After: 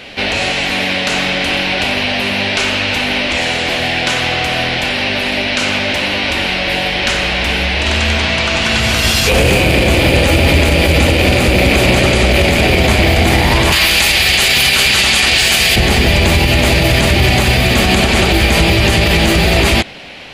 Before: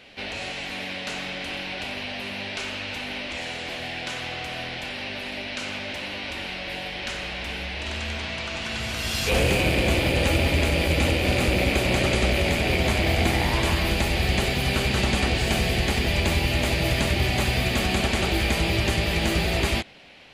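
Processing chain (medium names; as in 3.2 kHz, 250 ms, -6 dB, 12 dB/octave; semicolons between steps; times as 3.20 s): 13.72–15.76 s: tilt shelf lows -9.5 dB; loudness maximiser +17.5 dB; trim -1 dB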